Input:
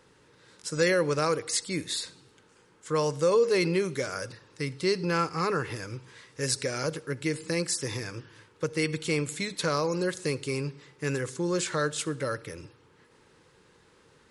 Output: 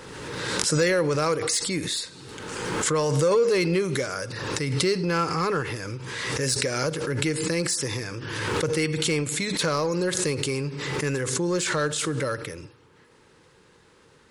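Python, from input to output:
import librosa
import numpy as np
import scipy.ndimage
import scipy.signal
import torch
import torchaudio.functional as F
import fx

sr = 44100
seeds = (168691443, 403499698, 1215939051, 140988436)

p1 = np.clip(x, -10.0 ** (-26.0 / 20.0), 10.0 ** (-26.0 / 20.0))
p2 = x + (p1 * 10.0 ** (-7.0 / 20.0))
y = fx.pre_swell(p2, sr, db_per_s=30.0)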